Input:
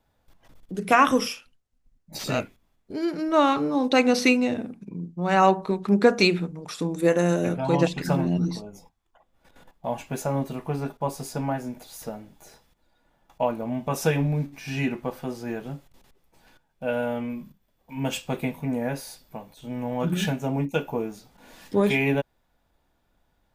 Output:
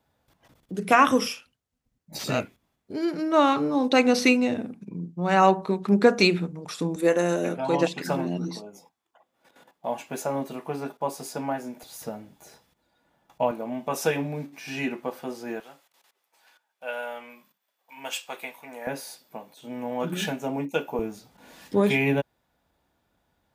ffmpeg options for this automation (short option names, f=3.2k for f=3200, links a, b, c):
-af "asetnsamples=n=441:p=0,asendcmd='6.96 highpass f 250;11.83 highpass f 90;13.51 highpass f 260;15.6 highpass f 820;18.87 highpass f 250;20.99 highpass f 69',highpass=78"